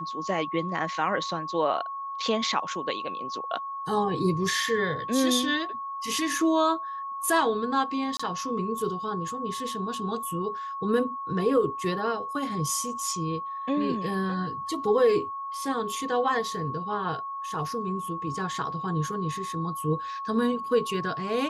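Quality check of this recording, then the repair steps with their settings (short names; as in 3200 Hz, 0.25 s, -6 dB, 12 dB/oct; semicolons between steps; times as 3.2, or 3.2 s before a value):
tone 1100 Hz -32 dBFS
8.17–8.2 gap 25 ms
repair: notch 1100 Hz, Q 30; interpolate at 8.17, 25 ms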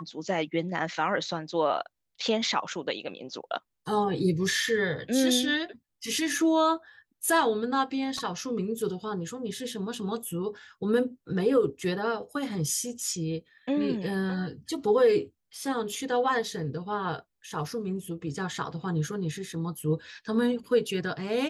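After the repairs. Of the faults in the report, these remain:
none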